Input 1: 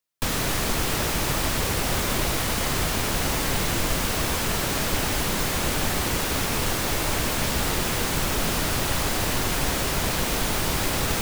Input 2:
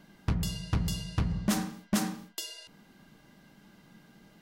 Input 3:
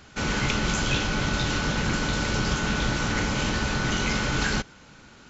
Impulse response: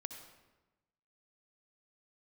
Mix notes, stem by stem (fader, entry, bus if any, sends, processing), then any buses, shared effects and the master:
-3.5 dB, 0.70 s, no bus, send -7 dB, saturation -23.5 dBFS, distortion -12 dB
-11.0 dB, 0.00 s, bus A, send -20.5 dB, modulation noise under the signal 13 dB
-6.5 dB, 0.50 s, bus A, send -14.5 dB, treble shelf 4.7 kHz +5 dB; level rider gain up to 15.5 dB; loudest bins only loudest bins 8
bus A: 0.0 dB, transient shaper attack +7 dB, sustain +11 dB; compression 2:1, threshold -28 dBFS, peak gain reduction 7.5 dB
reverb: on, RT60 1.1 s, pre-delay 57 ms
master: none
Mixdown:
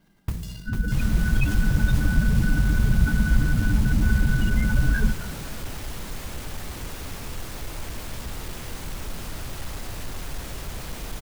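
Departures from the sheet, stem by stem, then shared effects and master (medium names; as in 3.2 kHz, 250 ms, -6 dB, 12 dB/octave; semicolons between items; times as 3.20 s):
stem 1 -3.5 dB -> -12.0 dB; master: extra bass shelf 100 Hz +11.5 dB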